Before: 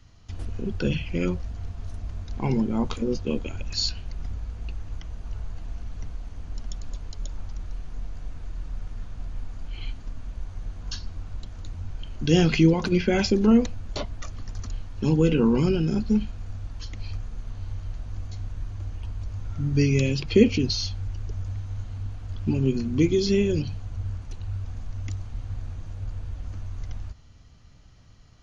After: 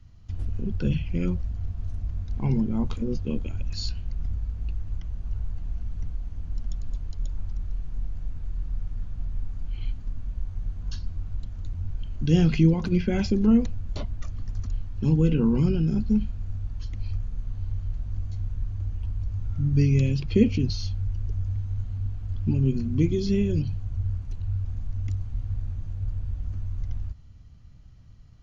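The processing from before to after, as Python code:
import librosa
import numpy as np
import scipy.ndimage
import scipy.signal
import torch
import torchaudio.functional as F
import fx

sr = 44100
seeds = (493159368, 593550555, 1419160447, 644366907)

y = fx.bass_treble(x, sr, bass_db=11, treble_db=-2)
y = y * 10.0 ** (-7.5 / 20.0)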